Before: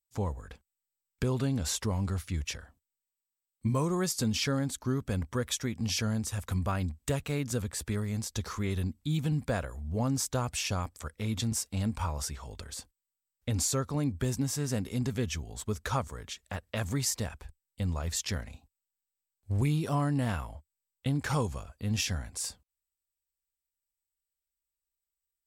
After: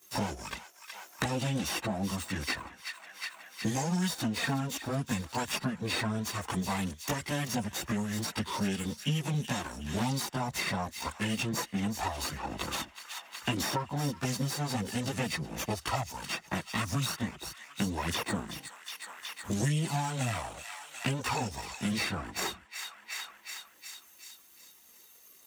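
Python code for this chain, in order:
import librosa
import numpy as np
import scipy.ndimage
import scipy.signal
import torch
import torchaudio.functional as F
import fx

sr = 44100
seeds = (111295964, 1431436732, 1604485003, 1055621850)

y = fx.lower_of_two(x, sr, delay_ms=0.86)
y = scipy.signal.sosfilt(scipy.signal.butter(2, 190.0, 'highpass', fs=sr, output='sos'), y)
y = fx.peak_eq(y, sr, hz=6600.0, db=-2.5, octaves=0.5)
y = fx.formant_shift(y, sr, semitones=-4)
y = fx.chorus_voices(y, sr, voices=6, hz=0.46, base_ms=18, depth_ms=3.2, mix_pct=70)
y = fx.echo_wet_highpass(y, sr, ms=368, feedback_pct=41, hz=1600.0, wet_db=-15.0)
y = fx.band_squash(y, sr, depth_pct=100)
y = F.gain(torch.from_numpy(y), 6.0).numpy()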